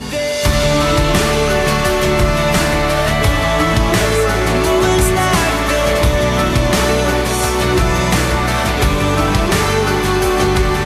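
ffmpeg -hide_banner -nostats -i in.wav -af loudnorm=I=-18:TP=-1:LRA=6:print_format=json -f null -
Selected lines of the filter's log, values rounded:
"input_i" : "-14.3",
"input_tp" : "-3.5",
"input_lra" : "0.9",
"input_thresh" : "-24.3",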